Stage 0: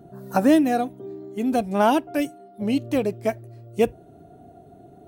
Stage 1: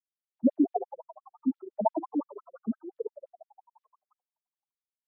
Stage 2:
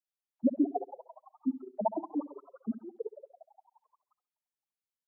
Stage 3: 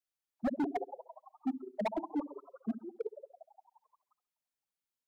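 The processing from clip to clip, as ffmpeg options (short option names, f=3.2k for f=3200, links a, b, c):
-filter_complex "[0:a]afftfilt=real='re*gte(hypot(re,im),0.562)':imag='im*gte(hypot(re,im),0.562)':win_size=1024:overlap=0.75,asplit=6[a][b][c][d][e][f];[b]adelay=170,afreqshift=120,volume=-14dB[g];[c]adelay=340,afreqshift=240,volume=-19.8dB[h];[d]adelay=510,afreqshift=360,volume=-25.7dB[i];[e]adelay=680,afreqshift=480,volume=-31.5dB[j];[f]adelay=850,afreqshift=600,volume=-37.4dB[k];[a][g][h][i][j][k]amix=inputs=6:normalize=0,afftfilt=real='re*between(b*sr/1024,250*pow(4800/250,0.5+0.5*sin(2*PI*5.8*pts/sr))/1.41,250*pow(4800/250,0.5+0.5*sin(2*PI*5.8*pts/sr))*1.41)':imag='im*between(b*sr/1024,250*pow(4800/250,0.5+0.5*sin(2*PI*5.8*pts/sr))/1.41,250*pow(4800/250,0.5+0.5*sin(2*PI*5.8*pts/sr))*1.41)':win_size=1024:overlap=0.75"
-filter_complex "[0:a]asplit=2[a][b];[b]adelay=67,lowpass=f=1.2k:p=1,volume=-13.5dB,asplit=2[c][d];[d]adelay=67,lowpass=f=1.2k:p=1,volume=0.37,asplit=2[e][f];[f]adelay=67,lowpass=f=1.2k:p=1,volume=0.37,asplit=2[g][h];[h]adelay=67,lowpass=f=1.2k:p=1,volume=0.37[i];[a][c][e][g][i]amix=inputs=5:normalize=0,volume=-3.5dB"
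-af "volume=28dB,asoftclip=hard,volume=-28dB"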